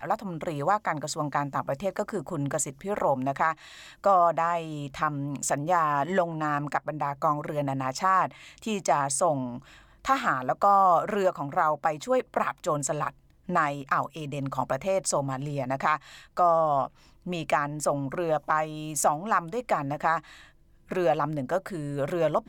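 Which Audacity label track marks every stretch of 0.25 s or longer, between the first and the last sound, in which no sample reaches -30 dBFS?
3.520000	4.040000	silence
8.260000	8.670000	silence
9.560000	10.050000	silence
13.080000	13.490000	silence
15.960000	16.370000	silence
16.860000	17.270000	silence
20.180000	20.910000	silence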